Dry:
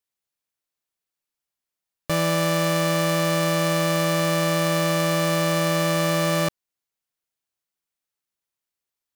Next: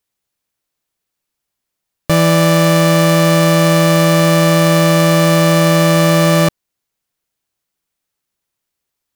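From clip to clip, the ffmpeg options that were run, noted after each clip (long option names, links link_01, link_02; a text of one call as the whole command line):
ffmpeg -i in.wav -af "lowshelf=frequency=400:gain=5,volume=8.5dB" out.wav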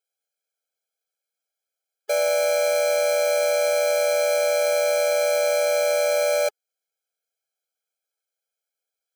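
ffmpeg -i in.wav -af "afftfilt=real='re*eq(mod(floor(b*sr/1024/430),2),1)':imag='im*eq(mod(floor(b*sr/1024/430),2),1)':win_size=1024:overlap=0.75,volume=-5.5dB" out.wav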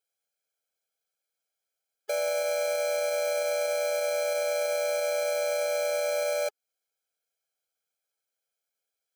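ffmpeg -i in.wav -af "alimiter=limit=-19dB:level=0:latency=1:release=144" out.wav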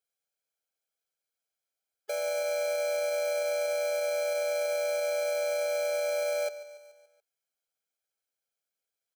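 ffmpeg -i in.wav -af "aecho=1:1:143|286|429|572|715:0.158|0.0888|0.0497|0.0278|0.0156,volume=-3.5dB" out.wav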